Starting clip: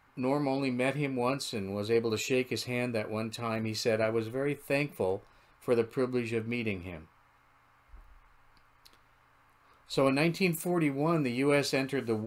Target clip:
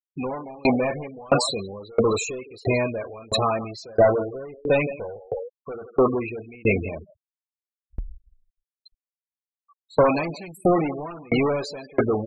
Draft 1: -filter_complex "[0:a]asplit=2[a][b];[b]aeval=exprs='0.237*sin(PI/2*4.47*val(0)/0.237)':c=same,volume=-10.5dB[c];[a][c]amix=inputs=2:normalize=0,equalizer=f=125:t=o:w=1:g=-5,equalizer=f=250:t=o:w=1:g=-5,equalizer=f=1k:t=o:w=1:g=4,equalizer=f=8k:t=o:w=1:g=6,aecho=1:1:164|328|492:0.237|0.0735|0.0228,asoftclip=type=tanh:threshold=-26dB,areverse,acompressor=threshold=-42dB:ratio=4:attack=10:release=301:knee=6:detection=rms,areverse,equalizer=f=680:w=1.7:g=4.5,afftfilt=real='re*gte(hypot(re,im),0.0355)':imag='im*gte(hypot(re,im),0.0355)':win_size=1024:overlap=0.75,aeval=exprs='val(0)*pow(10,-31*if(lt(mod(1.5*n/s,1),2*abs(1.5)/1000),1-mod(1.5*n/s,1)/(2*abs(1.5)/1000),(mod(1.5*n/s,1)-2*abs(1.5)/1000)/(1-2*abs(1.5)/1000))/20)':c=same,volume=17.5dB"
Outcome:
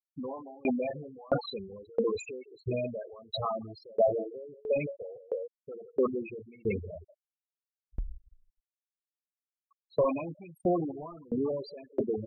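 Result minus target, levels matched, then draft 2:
compressor: peak gain reduction +7.5 dB
-filter_complex "[0:a]asplit=2[a][b];[b]aeval=exprs='0.237*sin(PI/2*4.47*val(0)/0.237)':c=same,volume=-10.5dB[c];[a][c]amix=inputs=2:normalize=0,equalizer=f=125:t=o:w=1:g=-5,equalizer=f=250:t=o:w=1:g=-5,equalizer=f=1k:t=o:w=1:g=4,equalizer=f=8k:t=o:w=1:g=6,aecho=1:1:164|328|492:0.237|0.0735|0.0228,asoftclip=type=tanh:threshold=-26dB,areverse,acompressor=threshold=-31.5dB:ratio=4:attack=10:release=301:knee=6:detection=rms,areverse,equalizer=f=680:w=1.7:g=4.5,afftfilt=real='re*gte(hypot(re,im),0.0355)':imag='im*gte(hypot(re,im),0.0355)':win_size=1024:overlap=0.75,aeval=exprs='val(0)*pow(10,-31*if(lt(mod(1.5*n/s,1),2*abs(1.5)/1000),1-mod(1.5*n/s,1)/(2*abs(1.5)/1000),(mod(1.5*n/s,1)-2*abs(1.5)/1000)/(1-2*abs(1.5)/1000))/20)':c=same,volume=17.5dB"

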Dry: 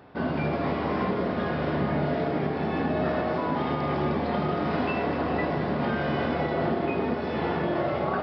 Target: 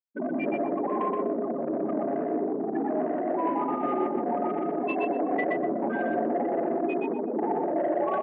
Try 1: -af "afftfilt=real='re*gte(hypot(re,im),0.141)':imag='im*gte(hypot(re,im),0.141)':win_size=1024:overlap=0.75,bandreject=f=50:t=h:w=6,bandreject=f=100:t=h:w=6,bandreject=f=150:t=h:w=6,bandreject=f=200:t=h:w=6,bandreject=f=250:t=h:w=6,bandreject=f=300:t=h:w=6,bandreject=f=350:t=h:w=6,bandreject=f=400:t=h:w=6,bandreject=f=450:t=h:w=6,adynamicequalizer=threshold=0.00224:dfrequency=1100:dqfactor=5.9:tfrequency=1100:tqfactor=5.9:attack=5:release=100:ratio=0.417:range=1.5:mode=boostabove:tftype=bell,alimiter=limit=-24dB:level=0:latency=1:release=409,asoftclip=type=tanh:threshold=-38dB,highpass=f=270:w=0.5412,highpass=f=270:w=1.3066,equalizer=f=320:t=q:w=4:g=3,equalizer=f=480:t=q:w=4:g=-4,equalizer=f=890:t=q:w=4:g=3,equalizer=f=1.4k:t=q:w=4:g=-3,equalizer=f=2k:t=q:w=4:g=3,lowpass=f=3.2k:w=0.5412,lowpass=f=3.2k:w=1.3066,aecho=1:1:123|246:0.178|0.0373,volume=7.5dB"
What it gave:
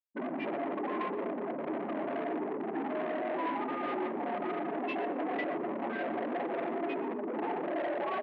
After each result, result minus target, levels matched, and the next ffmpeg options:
echo-to-direct -12 dB; soft clip: distortion +11 dB
-af "afftfilt=real='re*gte(hypot(re,im),0.141)':imag='im*gte(hypot(re,im),0.141)':win_size=1024:overlap=0.75,bandreject=f=50:t=h:w=6,bandreject=f=100:t=h:w=6,bandreject=f=150:t=h:w=6,bandreject=f=200:t=h:w=6,bandreject=f=250:t=h:w=6,bandreject=f=300:t=h:w=6,bandreject=f=350:t=h:w=6,bandreject=f=400:t=h:w=6,bandreject=f=450:t=h:w=6,adynamicequalizer=threshold=0.00224:dfrequency=1100:dqfactor=5.9:tfrequency=1100:tqfactor=5.9:attack=5:release=100:ratio=0.417:range=1.5:mode=boostabove:tftype=bell,alimiter=limit=-24dB:level=0:latency=1:release=409,asoftclip=type=tanh:threshold=-38dB,highpass=f=270:w=0.5412,highpass=f=270:w=1.3066,equalizer=f=320:t=q:w=4:g=3,equalizer=f=480:t=q:w=4:g=-4,equalizer=f=890:t=q:w=4:g=3,equalizer=f=1.4k:t=q:w=4:g=-3,equalizer=f=2k:t=q:w=4:g=3,lowpass=f=3.2k:w=0.5412,lowpass=f=3.2k:w=1.3066,aecho=1:1:123|246|369:0.708|0.149|0.0312,volume=7.5dB"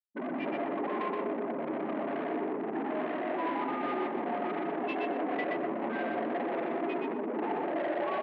soft clip: distortion +11 dB
-af "afftfilt=real='re*gte(hypot(re,im),0.141)':imag='im*gte(hypot(re,im),0.141)':win_size=1024:overlap=0.75,bandreject=f=50:t=h:w=6,bandreject=f=100:t=h:w=6,bandreject=f=150:t=h:w=6,bandreject=f=200:t=h:w=6,bandreject=f=250:t=h:w=6,bandreject=f=300:t=h:w=6,bandreject=f=350:t=h:w=6,bandreject=f=400:t=h:w=6,bandreject=f=450:t=h:w=6,adynamicequalizer=threshold=0.00224:dfrequency=1100:dqfactor=5.9:tfrequency=1100:tqfactor=5.9:attack=5:release=100:ratio=0.417:range=1.5:mode=boostabove:tftype=bell,alimiter=limit=-24dB:level=0:latency=1:release=409,asoftclip=type=tanh:threshold=-27dB,highpass=f=270:w=0.5412,highpass=f=270:w=1.3066,equalizer=f=320:t=q:w=4:g=3,equalizer=f=480:t=q:w=4:g=-4,equalizer=f=890:t=q:w=4:g=3,equalizer=f=1.4k:t=q:w=4:g=-3,equalizer=f=2k:t=q:w=4:g=3,lowpass=f=3.2k:w=0.5412,lowpass=f=3.2k:w=1.3066,aecho=1:1:123|246|369:0.708|0.149|0.0312,volume=7.5dB"

